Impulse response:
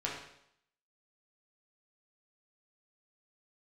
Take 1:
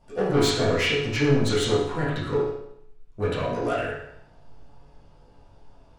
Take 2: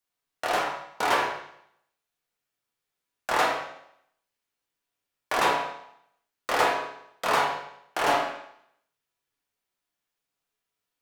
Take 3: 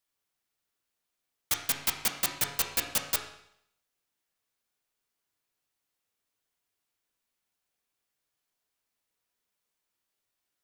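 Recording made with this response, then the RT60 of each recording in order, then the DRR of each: 2; 0.75, 0.75, 0.75 seconds; −12.5, −4.5, 2.0 decibels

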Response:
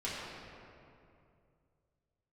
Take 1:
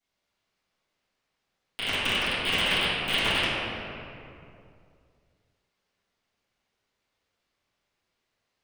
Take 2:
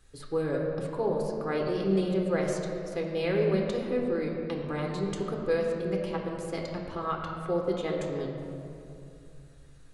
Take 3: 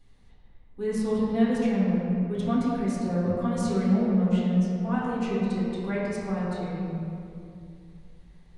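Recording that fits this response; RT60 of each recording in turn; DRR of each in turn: 3; 2.5, 2.5, 2.5 seconds; −16.0, −0.5, −9.0 decibels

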